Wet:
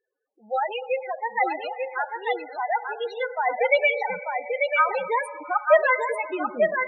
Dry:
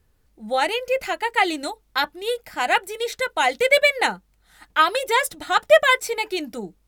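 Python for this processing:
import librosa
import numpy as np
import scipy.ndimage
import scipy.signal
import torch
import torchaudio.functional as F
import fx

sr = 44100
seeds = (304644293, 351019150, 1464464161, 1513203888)

y = fx.rev_schroeder(x, sr, rt60_s=2.8, comb_ms=33, drr_db=9.0)
y = fx.filter_sweep_highpass(y, sr, from_hz=480.0, to_hz=140.0, start_s=2.94, end_s=3.7, q=0.84)
y = fx.spec_topn(y, sr, count=8)
y = y + 10.0 ** (-4.5 / 20.0) * np.pad(y, (int(891 * sr / 1000.0), 0))[:len(y)]
y = F.gain(torch.from_numpy(y), -3.0).numpy()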